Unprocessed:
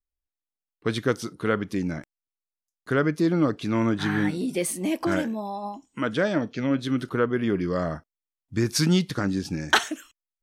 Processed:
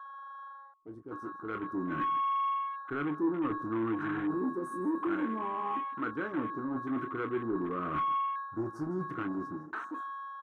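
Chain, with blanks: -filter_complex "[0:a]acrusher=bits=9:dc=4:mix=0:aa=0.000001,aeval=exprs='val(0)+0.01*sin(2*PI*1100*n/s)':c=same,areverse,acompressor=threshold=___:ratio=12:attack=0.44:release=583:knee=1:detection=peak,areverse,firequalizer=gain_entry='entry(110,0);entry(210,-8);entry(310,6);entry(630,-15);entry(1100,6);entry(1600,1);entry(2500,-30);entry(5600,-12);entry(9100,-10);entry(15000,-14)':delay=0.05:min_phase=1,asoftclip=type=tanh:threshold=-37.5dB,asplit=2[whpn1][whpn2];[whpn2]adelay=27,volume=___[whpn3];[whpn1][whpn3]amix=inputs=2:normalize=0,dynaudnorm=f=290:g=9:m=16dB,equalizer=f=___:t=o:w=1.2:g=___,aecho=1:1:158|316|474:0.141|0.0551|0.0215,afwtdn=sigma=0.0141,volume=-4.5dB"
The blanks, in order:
-35dB, -8.5dB, 79, -13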